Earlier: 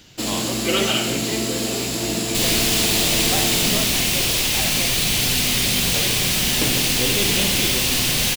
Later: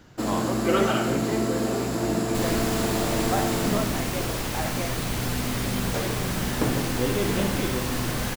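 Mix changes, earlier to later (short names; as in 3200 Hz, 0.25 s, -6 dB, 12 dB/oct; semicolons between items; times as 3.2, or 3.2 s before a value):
second sound: send -6.5 dB; master: add resonant high shelf 2000 Hz -11 dB, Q 1.5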